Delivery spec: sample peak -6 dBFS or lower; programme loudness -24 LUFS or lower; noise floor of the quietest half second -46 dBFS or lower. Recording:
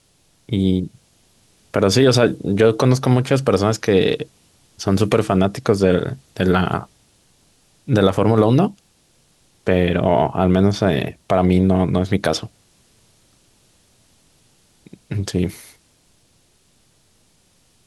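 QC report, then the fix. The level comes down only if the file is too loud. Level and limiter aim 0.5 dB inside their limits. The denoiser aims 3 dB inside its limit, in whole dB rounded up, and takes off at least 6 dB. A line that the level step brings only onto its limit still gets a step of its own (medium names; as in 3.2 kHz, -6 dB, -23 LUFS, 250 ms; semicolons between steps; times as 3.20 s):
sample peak -3.5 dBFS: fail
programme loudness -18.0 LUFS: fail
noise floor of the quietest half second -58 dBFS: pass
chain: trim -6.5 dB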